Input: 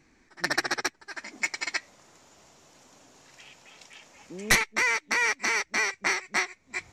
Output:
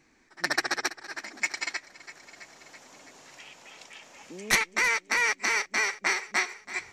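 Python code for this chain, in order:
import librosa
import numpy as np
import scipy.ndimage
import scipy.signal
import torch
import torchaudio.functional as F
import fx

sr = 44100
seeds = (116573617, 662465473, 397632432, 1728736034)

y = fx.low_shelf(x, sr, hz=200.0, db=-7.5)
y = fx.echo_feedback(y, sr, ms=330, feedback_pct=59, wet_db=-16.0)
y = fx.band_squash(y, sr, depth_pct=40, at=(1.73, 4.53))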